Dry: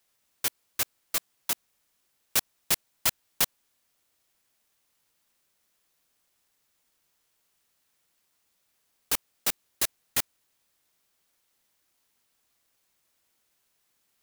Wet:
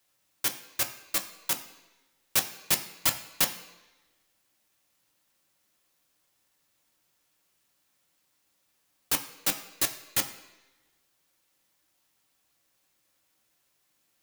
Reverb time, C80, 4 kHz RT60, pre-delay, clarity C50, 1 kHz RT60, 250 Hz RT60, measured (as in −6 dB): 1.1 s, 13.5 dB, 1.1 s, 3 ms, 11.5 dB, 1.0 s, 1.0 s